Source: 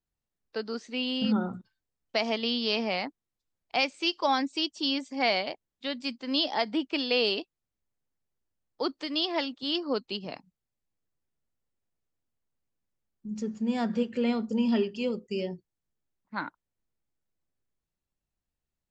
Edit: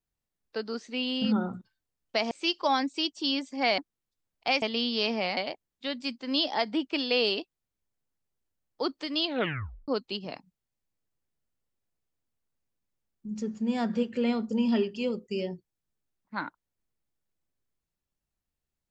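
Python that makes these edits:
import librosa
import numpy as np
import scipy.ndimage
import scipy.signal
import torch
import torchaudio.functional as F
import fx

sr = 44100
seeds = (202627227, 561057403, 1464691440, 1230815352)

y = fx.edit(x, sr, fx.swap(start_s=2.31, length_s=0.75, other_s=3.9, other_length_s=1.47),
    fx.tape_stop(start_s=9.21, length_s=0.67), tone=tone)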